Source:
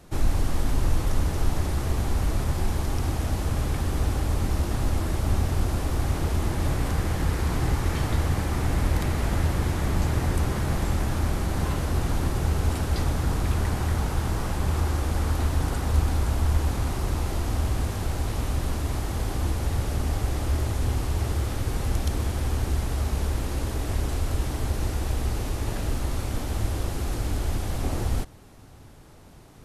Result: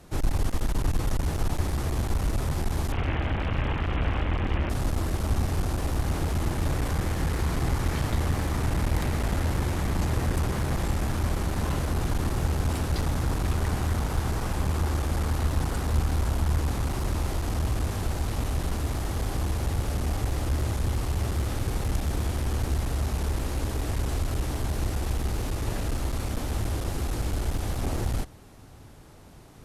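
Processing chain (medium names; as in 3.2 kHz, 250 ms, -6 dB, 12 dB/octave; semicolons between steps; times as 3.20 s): 2.92–4.70 s: one-bit delta coder 16 kbps, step -24 dBFS; one-sided clip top -25 dBFS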